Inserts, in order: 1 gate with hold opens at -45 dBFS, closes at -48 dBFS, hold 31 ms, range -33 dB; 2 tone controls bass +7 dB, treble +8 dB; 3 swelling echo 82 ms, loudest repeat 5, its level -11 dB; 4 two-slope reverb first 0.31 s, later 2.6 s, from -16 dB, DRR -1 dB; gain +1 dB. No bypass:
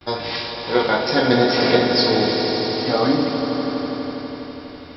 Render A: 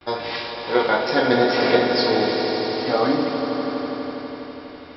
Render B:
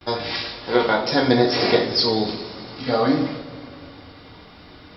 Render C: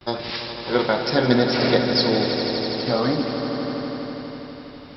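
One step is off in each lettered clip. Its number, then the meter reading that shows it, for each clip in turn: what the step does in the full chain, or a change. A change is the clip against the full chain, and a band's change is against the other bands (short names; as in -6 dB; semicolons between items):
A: 2, 125 Hz band -6.0 dB; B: 3, momentary loudness spread change +3 LU; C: 4, echo-to-direct 4.5 dB to -1.5 dB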